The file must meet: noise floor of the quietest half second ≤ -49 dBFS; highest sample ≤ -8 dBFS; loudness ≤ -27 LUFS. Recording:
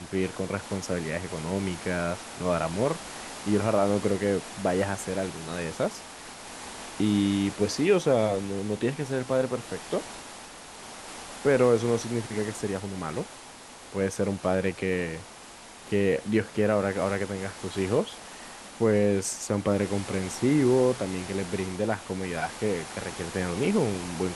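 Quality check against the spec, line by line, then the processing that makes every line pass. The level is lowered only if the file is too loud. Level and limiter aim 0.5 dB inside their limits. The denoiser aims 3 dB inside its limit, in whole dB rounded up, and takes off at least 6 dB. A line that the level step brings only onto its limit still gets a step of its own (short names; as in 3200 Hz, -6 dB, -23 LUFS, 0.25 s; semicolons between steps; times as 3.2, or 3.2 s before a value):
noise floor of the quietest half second -46 dBFS: fail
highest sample -10.0 dBFS: OK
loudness -28.0 LUFS: OK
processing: denoiser 6 dB, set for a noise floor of -46 dBFS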